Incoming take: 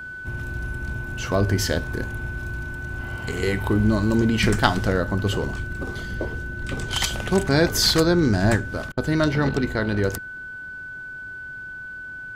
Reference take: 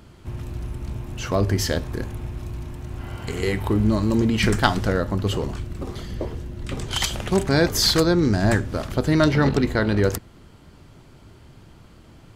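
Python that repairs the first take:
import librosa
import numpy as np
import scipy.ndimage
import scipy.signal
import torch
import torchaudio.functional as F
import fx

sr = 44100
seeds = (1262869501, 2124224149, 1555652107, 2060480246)

y = fx.notch(x, sr, hz=1500.0, q=30.0)
y = fx.fix_interpolate(y, sr, at_s=(8.92,), length_ms=52.0)
y = fx.fix_level(y, sr, at_s=8.56, step_db=3.0)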